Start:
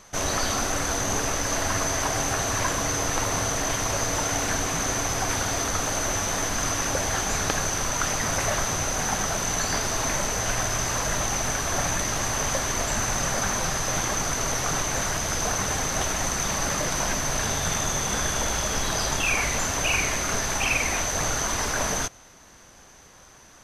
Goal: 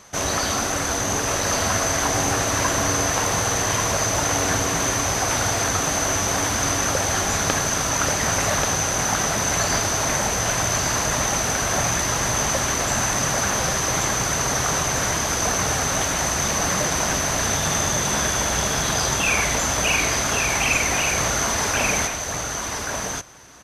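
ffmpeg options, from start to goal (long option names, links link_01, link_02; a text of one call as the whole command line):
ffmpeg -i in.wav -filter_complex "[0:a]highpass=52,asplit=2[link_01][link_02];[link_02]aecho=0:1:1134:0.631[link_03];[link_01][link_03]amix=inputs=2:normalize=0,volume=3dB" out.wav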